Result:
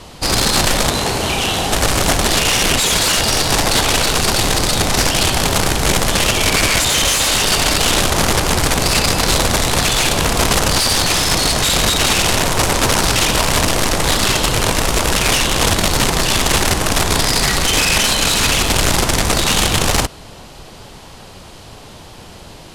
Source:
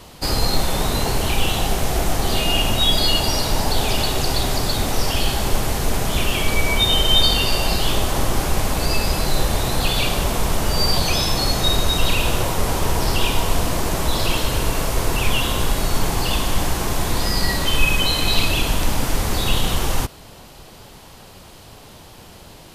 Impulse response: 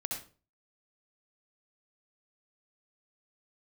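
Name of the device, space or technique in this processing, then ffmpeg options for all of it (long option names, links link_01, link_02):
overflowing digital effects unit: -filter_complex "[0:a]asettb=1/sr,asplit=3[link_01][link_02][link_03];[link_01]atrim=end=0.904[link_04];[link_02]atrim=start=0.9:end=1.73,asetpts=PTS-STARTPTS,afade=type=in:duration=0.004:curve=qsin,afade=type=out:start_time=0.826:duration=0.004:curve=qsin,highpass=frequency=140:poles=1[link_05];[link_03]atrim=start=1.726[link_06];[link_04][link_05]acrossfade=duration=0.004:curve1=hsin:curve2=qsin[link_07];[link_07][link_06]acrossfade=duration=0.004:curve1=qsin:curve2=hsin,aeval=exprs='(mod(5.01*val(0)+1,2)-1)/5.01':channel_layout=same,lowpass=9900,volume=5.5dB"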